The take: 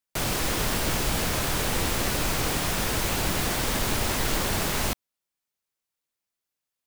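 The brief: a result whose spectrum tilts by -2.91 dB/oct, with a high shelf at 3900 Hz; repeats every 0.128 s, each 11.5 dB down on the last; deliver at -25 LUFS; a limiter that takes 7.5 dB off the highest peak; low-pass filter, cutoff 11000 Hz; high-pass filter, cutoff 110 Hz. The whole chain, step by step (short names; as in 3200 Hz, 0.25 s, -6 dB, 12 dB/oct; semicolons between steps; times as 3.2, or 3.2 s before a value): HPF 110 Hz; LPF 11000 Hz; high shelf 3900 Hz +4 dB; limiter -21 dBFS; feedback echo 0.128 s, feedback 27%, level -11.5 dB; gain +4 dB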